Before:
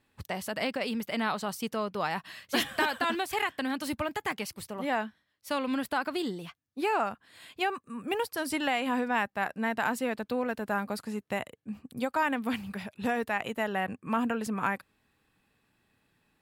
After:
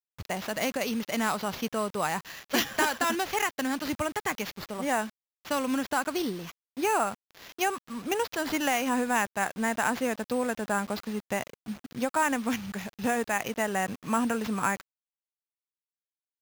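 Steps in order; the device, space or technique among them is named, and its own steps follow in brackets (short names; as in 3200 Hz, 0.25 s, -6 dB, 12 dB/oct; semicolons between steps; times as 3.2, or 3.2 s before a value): early 8-bit sampler (sample-rate reducer 8900 Hz, jitter 0%; bit-crush 8-bit); gain +2 dB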